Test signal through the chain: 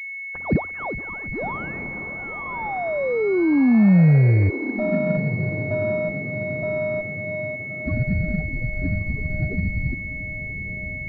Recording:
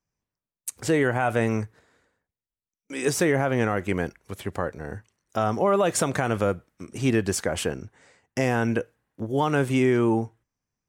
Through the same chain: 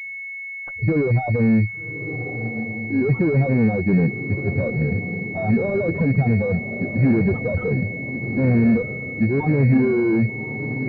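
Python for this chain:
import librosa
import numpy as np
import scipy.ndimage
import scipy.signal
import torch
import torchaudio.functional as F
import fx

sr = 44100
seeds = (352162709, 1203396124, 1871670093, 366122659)

p1 = fx.spec_expand(x, sr, power=2.5)
p2 = np.repeat(p1[::4], 4)[:len(p1)]
p3 = fx.spec_topn(p2, sr, count=8)
p4 = fx.tube_stage(p3, sr, drive_db=31.0, bias=0.25)
p5 = fx.env_flanger(p4, sr, rest_ms=7.1, full_db=-34.5)
p6 = fx.peak_eq(p5, sr, hz=170.0, db=13.0, octaves=2.3)
p7 = p6 + fx.echo_diffused(p6, sr, ms=1206, feedback_pct=47, wet_db=-10.0, dry=0)
p8 = fx.pwm(p7, sr, carrier_hz=2200.0)
y = F.gain(torch.from_numpy(p8), 7.0).numpy()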